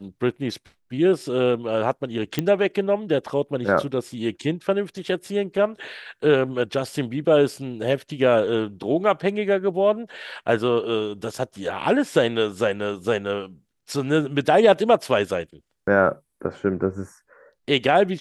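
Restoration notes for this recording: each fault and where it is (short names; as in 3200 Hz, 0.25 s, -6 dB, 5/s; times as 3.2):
2.39 pop -8 dBFS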